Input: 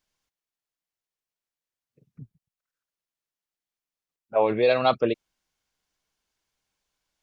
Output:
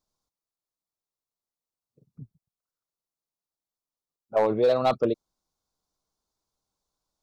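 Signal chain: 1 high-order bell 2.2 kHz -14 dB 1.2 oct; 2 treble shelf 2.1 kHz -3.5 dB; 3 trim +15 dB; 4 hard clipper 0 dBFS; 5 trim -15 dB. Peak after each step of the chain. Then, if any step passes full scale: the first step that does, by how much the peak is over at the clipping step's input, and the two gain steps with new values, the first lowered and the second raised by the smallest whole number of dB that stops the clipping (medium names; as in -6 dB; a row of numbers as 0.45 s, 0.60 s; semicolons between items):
-8.0 dBFS, -8.5 dBFS, +6.5 dBFS, 0.0 dBFS, -15.0 dBFS; step 3, 6.5 dB; step 3 +8 dB, step 5 -8 dB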